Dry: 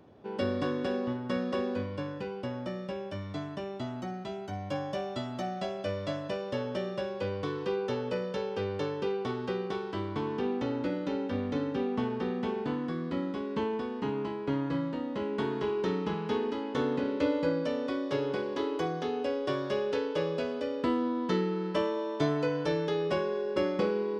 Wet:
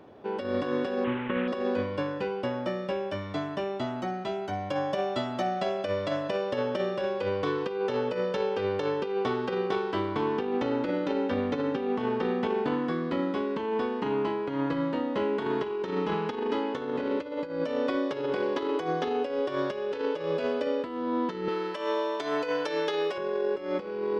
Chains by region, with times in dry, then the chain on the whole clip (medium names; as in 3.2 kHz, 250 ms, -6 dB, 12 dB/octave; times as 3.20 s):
1.04–1.48 s: one-bit delta coder 16 kbps, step -35 dBFS + peaking EQ 680 Hz -13.5 dB 0.32 oct
21.48–23.18 s: high-pass 250 Hz + tilt EQ +2 dB/octave + short-mantissa float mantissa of 6-bit
whole clip: tone controls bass -8 dB, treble -6 dB; compressor with a negative ratio -34 dBFS, ratio -0.5; trim +6 dB